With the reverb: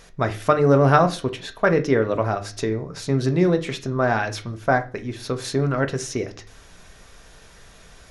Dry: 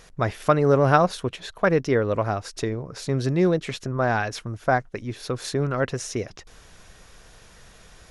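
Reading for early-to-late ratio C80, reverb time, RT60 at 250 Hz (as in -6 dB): 21.5 dB, 0.40 s, 0.50 s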